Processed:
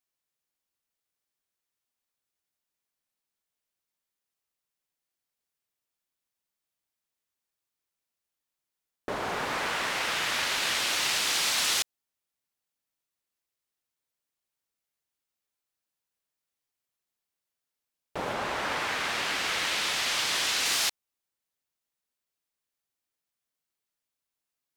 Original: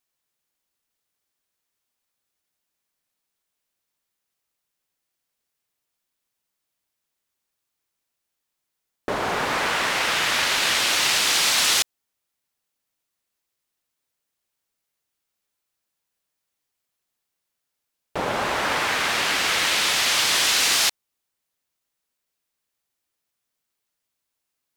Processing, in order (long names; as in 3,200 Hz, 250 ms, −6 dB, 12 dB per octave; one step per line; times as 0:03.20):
0:18.33–0:20.66: high-shelf EQ 8,700 Hz −5.5 dB
level −7 dB